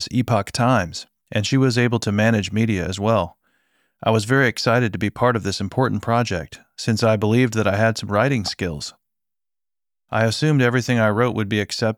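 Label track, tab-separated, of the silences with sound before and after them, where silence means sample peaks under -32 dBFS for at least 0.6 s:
3.280000	4.030000	silence
8.900000	10.120000	silence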